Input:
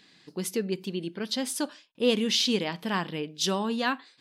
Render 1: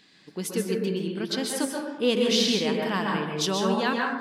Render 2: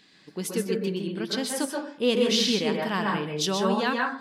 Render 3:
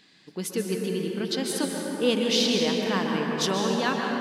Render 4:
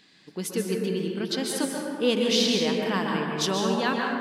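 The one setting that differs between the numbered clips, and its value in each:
plate-style reverb, RT60: 1.1 s, 0.51 s, 5.2 s, 2.4 s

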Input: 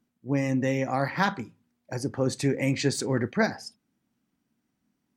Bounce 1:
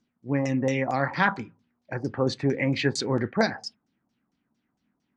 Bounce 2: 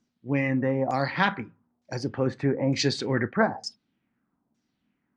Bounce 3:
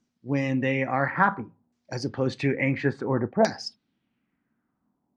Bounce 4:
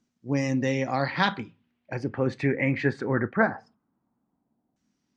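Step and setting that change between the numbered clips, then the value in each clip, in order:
LFO low-pass, rate: 4.4 Hz, 1.1 Hz, 0.58 Hz, 0.21 Hz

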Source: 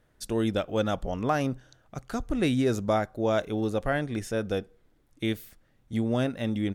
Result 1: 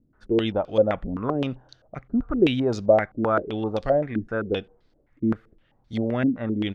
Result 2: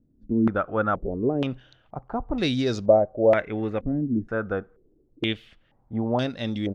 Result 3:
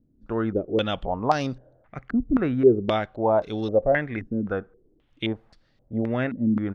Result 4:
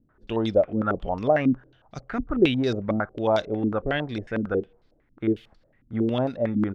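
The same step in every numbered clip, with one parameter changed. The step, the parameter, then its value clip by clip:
step-sequenced low-pass, rate: 7.7 Hz, 2.1 Hz, 3.8 Hz, 11 Hz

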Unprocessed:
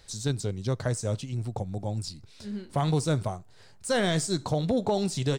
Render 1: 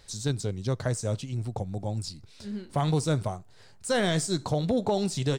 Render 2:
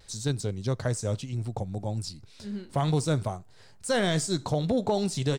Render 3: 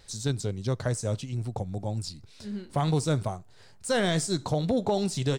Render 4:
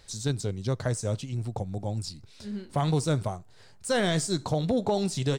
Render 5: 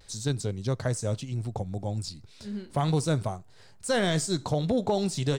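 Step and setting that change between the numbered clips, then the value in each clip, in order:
vibrato, rate: 4.8 Hz, 0.63 Hz, 2.2 Hz, 7.3 Hz, 0.39 Hz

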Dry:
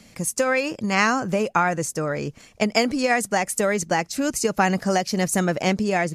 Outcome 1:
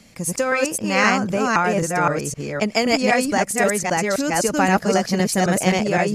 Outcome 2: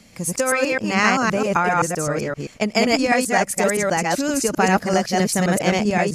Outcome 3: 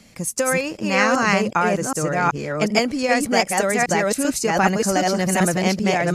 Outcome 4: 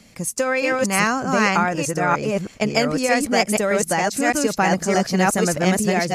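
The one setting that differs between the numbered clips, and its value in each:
chunks repeated in reverse, time: 260 ms, 130 ms, 386 ms, 618 ms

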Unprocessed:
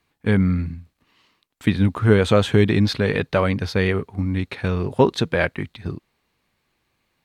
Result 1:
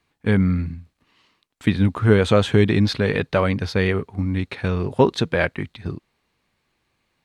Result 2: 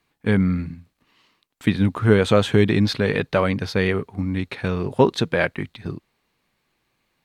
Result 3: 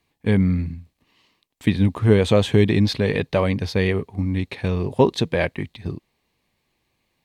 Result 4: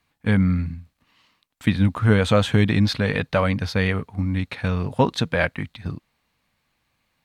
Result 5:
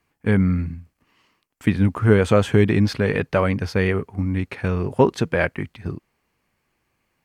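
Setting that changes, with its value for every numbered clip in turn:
peaking EQ, frequency: 15 kHz, 77 Hz, 1.4 kHz, 380 Hz, 3.8 kHz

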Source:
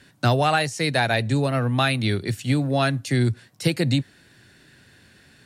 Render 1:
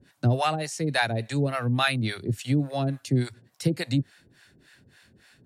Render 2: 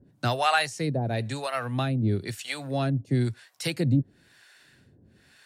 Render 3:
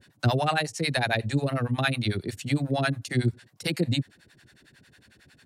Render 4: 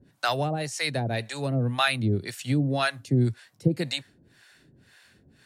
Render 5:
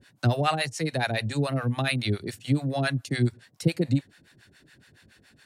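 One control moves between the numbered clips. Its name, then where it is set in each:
harmonic tremolo, rate: 3.5 Hz, 1 Hz, 11 Hz, 1.9 Hz, 7.1 Hz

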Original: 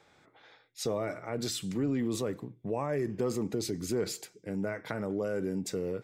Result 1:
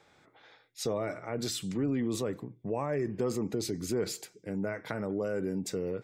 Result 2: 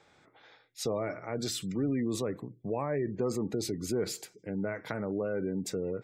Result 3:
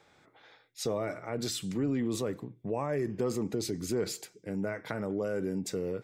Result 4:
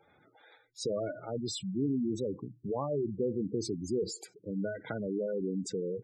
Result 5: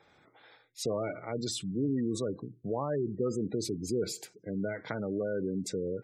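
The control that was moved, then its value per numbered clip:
spectral gate, under each frame's peak: -50 dB, -35 dB, -60 dB, -10 dB, -20 dB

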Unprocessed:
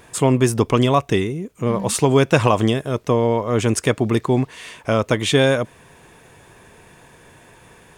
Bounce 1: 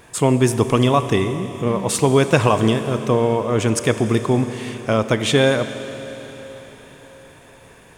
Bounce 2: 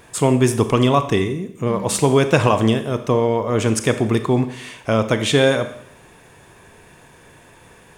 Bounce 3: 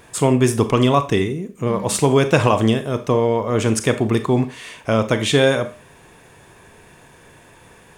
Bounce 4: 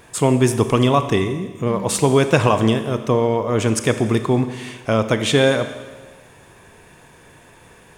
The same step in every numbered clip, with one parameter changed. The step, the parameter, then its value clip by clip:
Schroeder reverb, RT60: 4.6 s, 0.69 s, 0.33 s, 1.4 s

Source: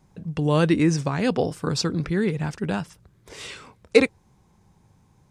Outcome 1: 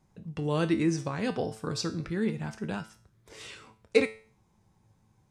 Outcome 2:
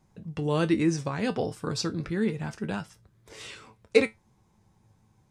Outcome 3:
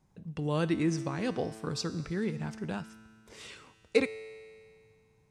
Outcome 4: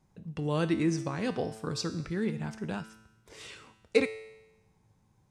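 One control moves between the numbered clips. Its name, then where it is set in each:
feedback comb, decay: 0.41 s, 0.17 s, 2.1 s, 0.96 s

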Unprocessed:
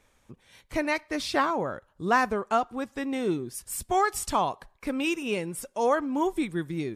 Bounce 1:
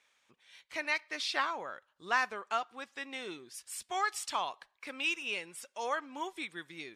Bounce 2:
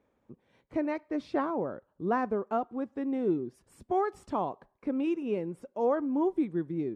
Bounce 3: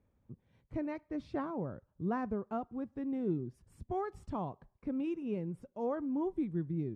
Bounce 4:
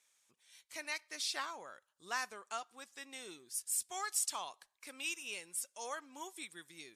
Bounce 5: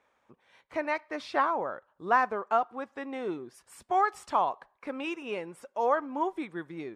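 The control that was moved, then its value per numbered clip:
band-pass filter, frequency: 3.1 kHz, 320 Hz, 120 Hz, 7.9 kHz, 950 Hz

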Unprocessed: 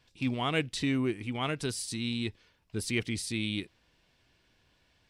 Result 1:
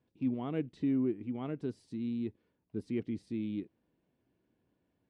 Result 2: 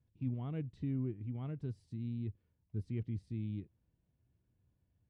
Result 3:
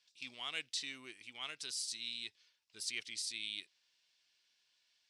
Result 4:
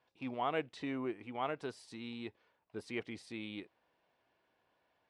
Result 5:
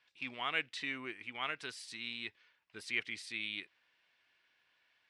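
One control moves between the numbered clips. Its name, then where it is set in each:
band-pass filter, frequency: 270 Hz, 100 Hz, 5.4 kHz, 760 Hz, 1.9 kHz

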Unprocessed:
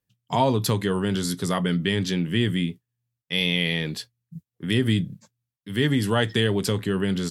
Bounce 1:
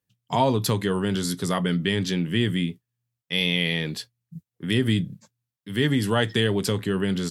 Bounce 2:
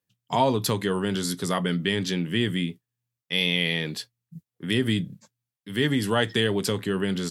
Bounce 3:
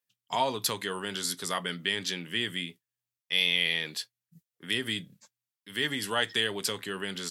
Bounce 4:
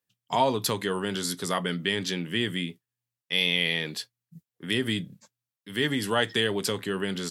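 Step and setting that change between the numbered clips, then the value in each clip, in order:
high-pass, cutoff frequency: 53 Hz, 170 Hz, 1.3 kHz, 450 Hz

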